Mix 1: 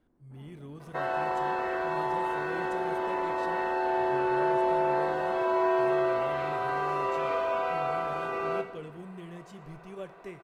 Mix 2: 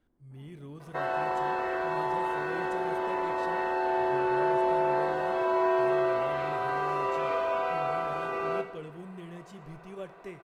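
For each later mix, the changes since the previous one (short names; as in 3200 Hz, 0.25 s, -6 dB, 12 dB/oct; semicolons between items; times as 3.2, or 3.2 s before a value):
first sound -4.5 dB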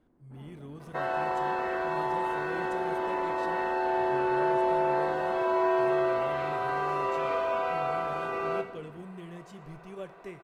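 first sound +8.0 dB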